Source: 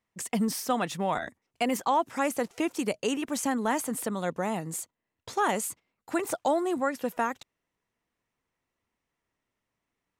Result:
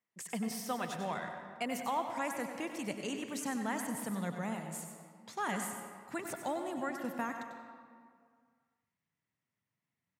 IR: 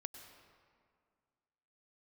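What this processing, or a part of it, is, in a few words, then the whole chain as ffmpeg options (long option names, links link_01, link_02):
PA in a hall: -filter_complex "[0:a]asplit=3[link_01][link_02][link_03];[link_01]afade=type=out:start_time=4.54:duration=0.02[link_04];[link_02]highpass=250,afade=type=in:start_time=4.54:duration=0.02,afade=type=out:start_time=5.45:duration=0.02[link_05];[link_03]afade=type=in:start_time=5.45:duration=0.02[link_06];[link_04][link_05][link_06]amix=inputs=3:normalize=0,asubboost=boost=8.5:cutoff=130,highpass=frequency=130:width=0.5412,highpass=frequency=130:width=1.3066,equalizer=frequency=2000:width_type=o:width=0.48:gain=3.5,aecho=1:1:95:0.335[link_07];[1:a]atrim=start_sample=2205[link_08];[link_07][link_08]afir=irnorm=-1:irlink=0,volume=-4.5dB"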